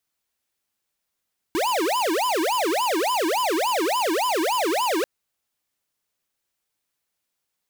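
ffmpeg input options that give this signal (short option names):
-f lavfi -i "aevalsrc='0.075*(2*lt(mod((665.5*t-354.5/(2*PI*3.5)*sin(2*PI*3.5*t)),1),0.5)-1)':d=3.49:s=44100"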